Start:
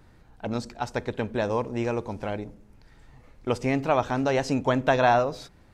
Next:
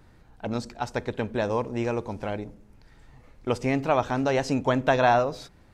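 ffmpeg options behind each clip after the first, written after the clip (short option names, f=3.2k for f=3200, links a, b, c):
-af anull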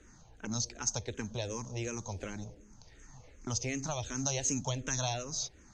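-filter_complex "[0:a]acrossover=split=150|3000[a][b][c];[b]acompressor=threshold=-35dB:ratio=6[d];[a][d][c]amix=inputs=3:normalize=0,lowpass=f=6.4k:t=q:w=16,asplit=2[e][f];[f]afreqshift=-2.7[g];[e][g]amix=inputs=2:normalize=1"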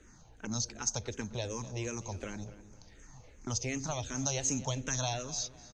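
-filter_complex "[0:a]asplit=2[a][b];[b]adelay=251,lowpass=f=4.1k:p=1,volume=-16dB,asplit=2[c][d];[d]adelay=251,lowpass=f=4.1k:p=1,volume=0.36,asplit=2[e][f];[f]adelay=251,lowpass=f=4.1k:p=1,volume=0.36[g];[a][c][e][g]amix=inputs=4:normalize=0"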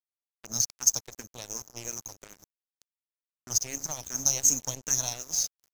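-af "aeval=exprs='if(lt(val(0),0),0.708*val(0),val(0))':c=same,aexciter=amount=6.4:drive=2.6:freq=5k,aeval=exprs='sgn(val(0))*max(abs(val(0))-0.015,0)':c=same"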